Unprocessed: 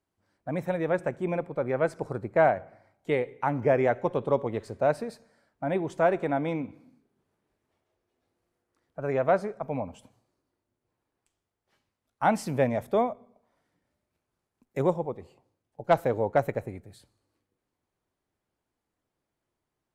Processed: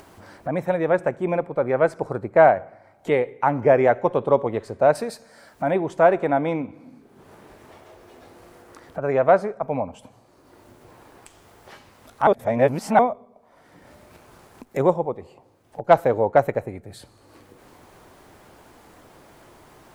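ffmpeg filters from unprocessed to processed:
-filter_complex "[0:a]asettb=1/sr,asplit=3[a][b][c];[a]atrim=end=4.954[d];[b]atrim=start=4.95:end=5.71,asetpts=PTS-STARTPTS,afade=t=in:d=0.004:c=qsin,afade=t=out:st=0.756:d=0.004:c=qsin,highshelf=f=2.8k:g=11[e];[c]atrim=start=5.706[f];[d][e]acrossfade=d=0.004:c1=hsin:c2=qsin[g];[g][f]acrossfade=d=0.004:c1=qsin:c2=hsin,asplit=3[h][i][j];[h]atrim=end=12.272[k];[i]atrim=start=12.268:end=12.992,asetpts=PTS-STARTPTS,areverse[l];[j]atrim=start=12.988[m];[k][l]acrossfade=d=0.004:c1=hsin:c2=hsin[n];[n][m]acrossfade=d=0.004:c1=hsin:c2=hsin,equalizer=f=820:t=o:w=2.6:g=5.5,acompressor=mode=upward:threshold=-29dB:ratio=2.5,volume=2.5dB"

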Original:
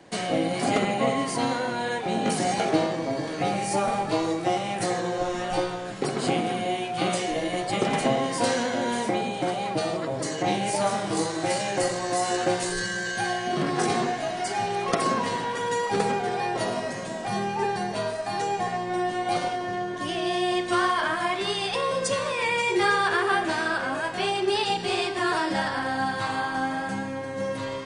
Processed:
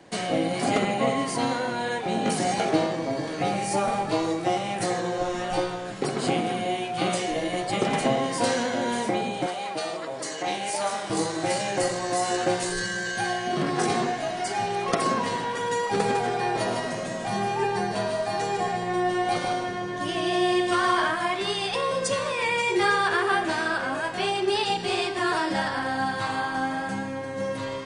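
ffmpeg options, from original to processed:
-filter_complex "[0:a]asettb=1/sr,asplit=3[a][b][c];[a]atrim=end=9.464[d];[b]atrim=start=9.46:end=11.1,asetpts=PTS-STARTPTS,afade=t=in:d=0.004:c=qsin,afade=t=out:st=1.636:d=0.004:c=qsin,highpass=f=660:p=1[e];[c]atrim=start=11.096[f];[d][e]acrossfade=d=0.004:c1=hsin:c2=qsin[g];[g][f]acrossfade=d=0.004:c1=qsin:c2=hsin,asettb=1/sr,asplit=3[h][i][j];[h]atrim=end=15.884[k];[i]atrim=start=15.88:end=21.11,asetpts=PTS-STARTPTS,afade=t=in:d=0.004:c=qsin,afade=t=out:st=5.226:d=0.004:c=qsin,aecho=1:1:153:0.562,atrim=end_sample=230643[l];[j]atrim=start=21.106[m];[k][l]acrossfade=d=0.004:c1=hsin:c2=qsin[n];[n][m]acrossfade=d=0.004:c1=qsin:c2=hsin"

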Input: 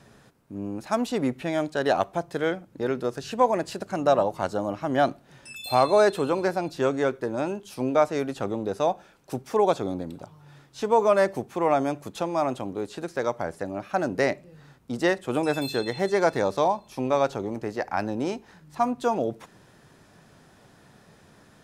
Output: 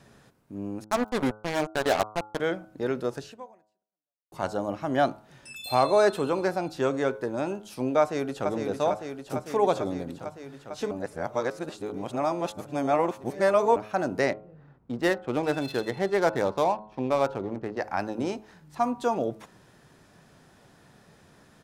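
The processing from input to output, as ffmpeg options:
-filter_complex "[0:a]asettb=1/sr,asplit=3[a][b][c];[a]atrim=end=0.844[d];[b]atrim=start=0.84:end=2.4,asetpts=PTS-STARTPTS,afade=t=in:d=0.004:c=qsin,afade=t=out:st=1.556:d=0.004:c=qsin,acrusher=bits=3:mix=0:aa=0.5[e];[c]atrim=start=2.396[f];[d][e]acrossfade=d=0.004:c1=hsin:c2=qsin[g];[g][f]acrossfade=d=0.004:c1=qsin:c2=hsin,asplit=2[h][i];[i]afade=t=in:st=8:d=0.01,afade=t=out:st=8.49:d=0.01,aecho=0:1:450|900|1350|1800|2250|2700|3150|3600|4050|4500|4950|5400:0.530884|0.424708|0.339766|0.271813|0.21745|0.17396|0.139168|0.111335|0.0890676|0.0712541|0.0570033|0.0456026[j];[h][j]amix=inputs=2:normalize=0,asettb=1/sr,asplit=3[k][l][m];[k]atrim=end=14.324[n];[l]atrim=start=14.32:end=17.77,asetpts=PTS-STARTPTS,afade=t=in:d=0.004:c=qsin,afade=t=out:st=3.446:d=0.004:c=qsin,adynamicsmooth=sensitivity=7:basefreq=1.3k[o];[m]atrim=start=17.766[p];[n][o]acrossfade=d=0.004:c1=hsin:c2=qsin[q];[q][p]acrossfade=d=0.004:c1=qsin:c2=hsin,asplit=4[r][s][t][u];[r]atrim=end=4.32,asetpts=PTS-STARTPTS,afade=t=out:st=3.19:d=1.13:c=exp[v];[s]atrim=start=4.32:end=10.912,asetpts=PTS-STARTPTS,afade=t=in:d=0.004:c=hsin[w];[t]atrim=start=10.908:end=13.762,asetpts=PTS-STARTPTS,areverse[x];[u]atrim=start=13.758[y];[v][w]concat=n=2:v=0:a=1[z];[z][x]acrossfade=d=0.004:c1=hsin:c2=hsin[aa];[aa][y]acrossfade=d=0.004:c1=hsin:c2=hsin,bandreject=f=106.8:t=h:w=4,bandreject=f=213.6:t=h:w=4,bandreject=f=320.4:t=h:w=4,bandreject=f=427.2:t=h:w=4,bandreject=f=534:t=h:w=4,bandreject=f=640.8:t=h:w=4,bandreject=f=747.6:t=h:w=4,bandreject=f=854.4:t=h:w=4,bandreject=f=961.2:t=h:w=4,bandreject=f=1.068k:t=h:w=4,bandreject=f=1.1748k:t=h:w=4,bandreject=f=1.2816k:t=h:w=4,bandreject=f=1.3884k:t=h:w=4,bandreject=f=1.4952k:t=h:w=4,volume=-1.5dB"

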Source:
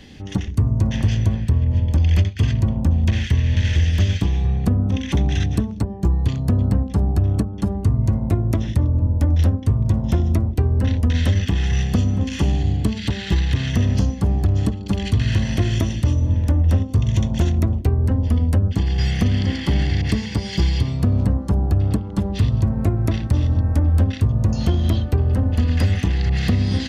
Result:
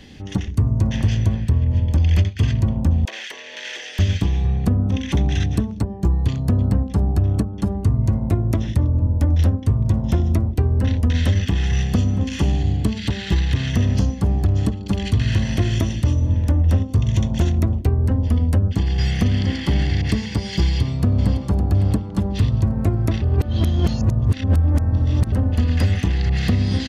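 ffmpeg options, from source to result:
-filter_complex "[0:a]asettb=1/sr,asplit=3[a][b][c];[a]atrim=end=3.054[d];[b]atrim=start=3.05:end=3.99,asetpts=PTS-STARTPTS,afade=t=in:d=0.004:c=qsin,afade=t=out:st=0.936:d=0.004:c=qsin,highpass=f=470:w=0.5412,highpass=f=470:w=1.3066[e];[c]atrim=start=3.986[f];[d][e]acrossfade=d=0.004:c1=hsin:c2=qsin[g];[g][f]acrossfade=d=0.004:c1=qsin:c2=hsin,asplit=2[h][i];[i]afade=t=in:st=20.62:d=0.01,afade=t=out:st=21.42:d=0.01,aecho=0:1:560|1120|1680|2240:0.316228|0.126491|0.0505964|0.0202386[j];[h][j]amix=inputs=2:normalize=0,asplit=3[k][l][m];[k]atrim=end=23.222[n];[l]atrim=start=23.218:end=25.322,asetpts=PTS-STARTPTS,areverse[o];[m]atrim=start=25.318[p];[n][o]acrossfade=d=0.004:c1=hsin:c2=hsin[q];[q][p]acrossfade=d=0.004:c1=hsin:c2=hsin"

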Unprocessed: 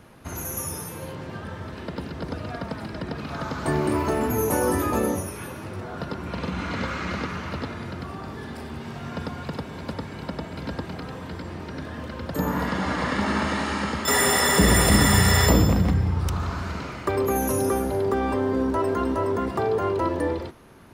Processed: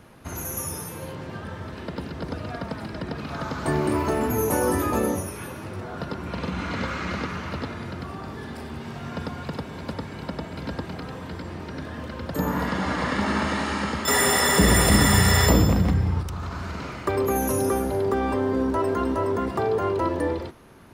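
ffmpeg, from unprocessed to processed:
-filter_complex "[0:a]asettb=1/sr,asplit=3[a][b][c];[a]atrim=end=16.214[d];[b]atrim=start=16.21:end=16.93,asetpts=PTS-STARTPTS,afade=t=in:d=0.004:c=qsin,afade=t=out:st=0.716:d=0.004:c=qsin,acompressor=threshold=-27dB:ratio=6:attack=3.2:release=140:knee=1:detection=peak[e];[c]atrim=start=16.926[f];[d][e]acrossfade=d=0.004:c1=hsin:c2=qsin[g];[g][f]acrossfade=d=0.004:c1=qsin:c2=hsin"

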